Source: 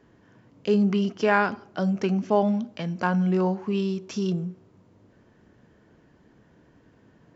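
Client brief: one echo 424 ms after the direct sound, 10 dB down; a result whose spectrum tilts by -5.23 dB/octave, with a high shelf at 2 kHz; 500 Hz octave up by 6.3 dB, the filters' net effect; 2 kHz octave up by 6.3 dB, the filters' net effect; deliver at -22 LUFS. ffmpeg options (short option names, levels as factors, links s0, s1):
-af "equalizer=f=500:t=o:g=8,highshelf=f=2000:g=3,equalizer=f=2000:t=o:g=6.5,aecho=1:1:424:0.316,volume=0.891"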